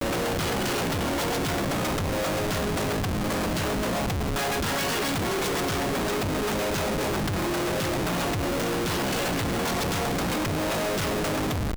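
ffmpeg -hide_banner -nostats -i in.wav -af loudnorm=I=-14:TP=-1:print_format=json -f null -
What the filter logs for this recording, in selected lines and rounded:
"input_i" : "-26.5",
"input_tp" : "-20.3",
"input_lra" : "0.3",
"input_thresh" : "-36.5",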